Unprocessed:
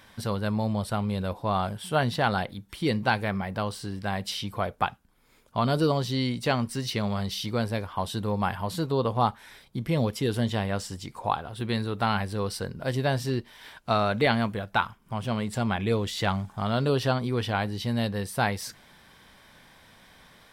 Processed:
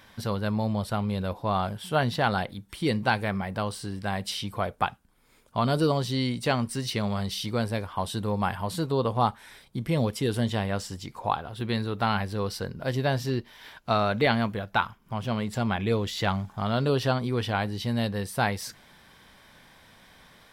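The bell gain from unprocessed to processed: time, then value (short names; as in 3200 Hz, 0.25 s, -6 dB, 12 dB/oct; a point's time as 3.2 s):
bell 8800 Hz 0.26 oct
1.95 s -5.5 dB
2.66 s +4 dB
10.39 s +4 dB
11.19 s -8 dB
16.64 s -8 dB
17.15 s -1 dB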